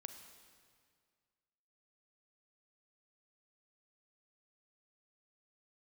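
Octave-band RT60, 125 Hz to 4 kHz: 2.2 s, 2.1 s, 2.0 s, 2.0 s, 1.9 s, 1.8 s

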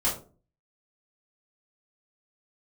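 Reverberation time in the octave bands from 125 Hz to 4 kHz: 0.55 s, 0.55 s, 0.45 s, 0.35 s, 0.25 s, 0.20 s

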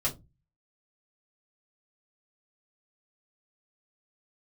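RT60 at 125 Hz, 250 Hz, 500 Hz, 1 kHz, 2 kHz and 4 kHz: 0.55 s, 0.35 s, 0.25 s, 0.20 s, 0.15 s, 0.15 s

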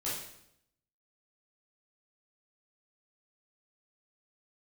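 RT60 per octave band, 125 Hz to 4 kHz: 0.90 s, 0.90 s, 0.80 s, 0.70 s, 0.70 s, 0.70 s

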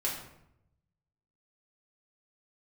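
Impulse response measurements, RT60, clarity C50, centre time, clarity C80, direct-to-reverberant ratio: 0.80 s, 4.5 dB, 38 ms, 7.5 dB, -5.0 dB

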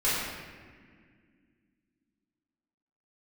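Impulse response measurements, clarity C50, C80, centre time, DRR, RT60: -2.0 dB, 0.5 dB, 108 ms, -11.0 dB, 1.9 s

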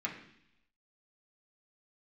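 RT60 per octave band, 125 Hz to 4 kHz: 0.90 s, 0.90 s, 0.70 s, 0.70 s, 0.90 s, 1.0 s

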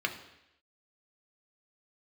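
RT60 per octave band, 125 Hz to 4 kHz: 0.75 s, 0.80 s, 0.85 s, 0.85 s, 0.90 s, 0.90 s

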